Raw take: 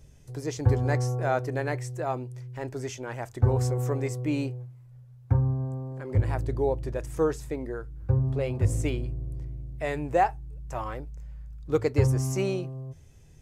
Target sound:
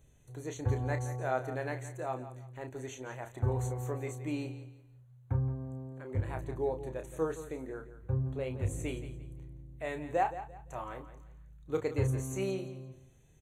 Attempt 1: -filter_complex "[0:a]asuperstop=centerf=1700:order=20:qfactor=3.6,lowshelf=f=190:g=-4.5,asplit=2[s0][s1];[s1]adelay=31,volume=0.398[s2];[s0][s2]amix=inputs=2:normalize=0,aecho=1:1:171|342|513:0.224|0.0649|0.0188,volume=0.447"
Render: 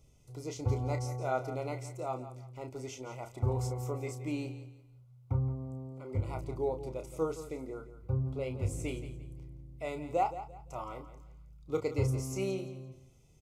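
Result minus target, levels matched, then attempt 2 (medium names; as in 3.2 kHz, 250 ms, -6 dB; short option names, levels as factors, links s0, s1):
2 kHz band -4.0 dB
-filter_complex "[0:a]asuperstop=centerf=5100:order=20:qfactor=3.6,lowshelf=f=190:g=-4.5,asplit=2[s0][s1];[s1]adelay=31,volume=0.398[s2];[s0][s2]amix=inputs=2:normalize=0,aecho=1:1:171|342|513:0.224|0.0649|0.0188,volume=0.447"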